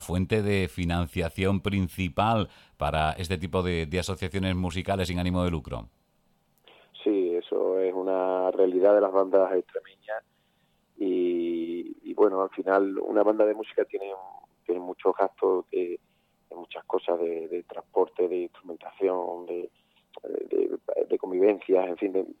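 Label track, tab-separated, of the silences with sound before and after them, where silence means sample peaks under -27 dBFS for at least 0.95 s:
5.800000	7.060000	silence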